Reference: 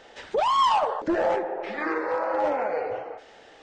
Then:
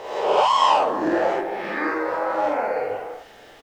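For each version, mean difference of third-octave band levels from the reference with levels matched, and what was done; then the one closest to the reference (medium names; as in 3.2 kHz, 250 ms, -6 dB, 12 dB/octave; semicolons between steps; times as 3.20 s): 4.0 dB: reverse spectral sustain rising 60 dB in 1.02 s; high-pass 100 Hz; added noise pink -60 dBFS; doubling 47 ms -2 dB; trim -1 dB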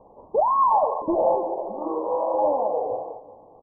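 8.5 dB: feedback delay 386 ms, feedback 39%, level -19 dB; crackle 340 per s -34 dBFS; dynamic bell 670 Hz, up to +5 dB, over -37 dBFS, Q 1.3; Chebyshev low-pass 1.1 kHz, order 8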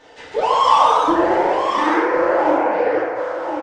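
5.0 dB: peaking EQ 190 Hz +6.5 dB 0.21 oct; delay 1072 ms -7.5 dB; FDN reverb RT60 0.87 s, low-frequency decay 0.8×, high-frequency decay 0.6×, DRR -7 dB; ever faster or slower copies 161 ms, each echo +1 st, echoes 3; trim -3 dB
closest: first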